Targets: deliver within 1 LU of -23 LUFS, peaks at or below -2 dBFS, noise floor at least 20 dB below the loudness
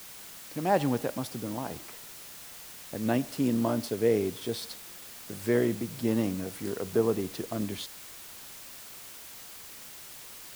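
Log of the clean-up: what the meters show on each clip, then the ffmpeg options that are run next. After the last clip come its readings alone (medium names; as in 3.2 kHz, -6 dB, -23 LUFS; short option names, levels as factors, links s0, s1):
noise floor -46 dBFS; noise floor target -51 dBFS; loudness -30.5 LUFS; peak level -11.0 dBFS; loudness target -23.0 LUFS
-> -af "afftdn=nr=6:nf=-46"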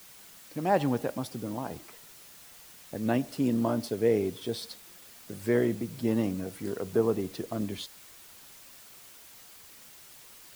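noise floor -52 dBFS; loudness -30.5 LUFS; peak level -11.0 dBFS; loudness target -23.0 LUFS
-> -af "volume=2.37"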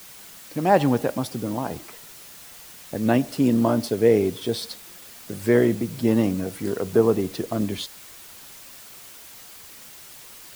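loudness -23.0 LUFS; peak level -3.5 dBFS; noise floor -44 dBFS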